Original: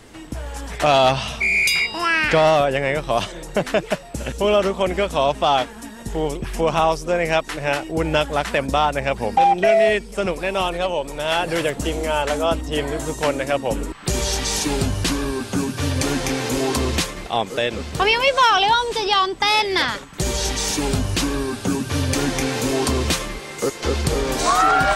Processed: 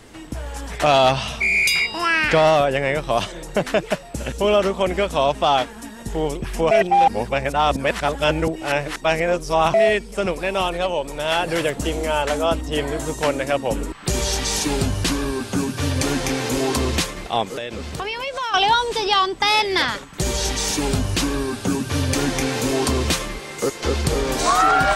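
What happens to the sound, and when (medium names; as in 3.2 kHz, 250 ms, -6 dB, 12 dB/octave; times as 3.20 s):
6.71–9.74 s: reverse
17.55–18.54 s: compression 4:1, threshold -25 dBFS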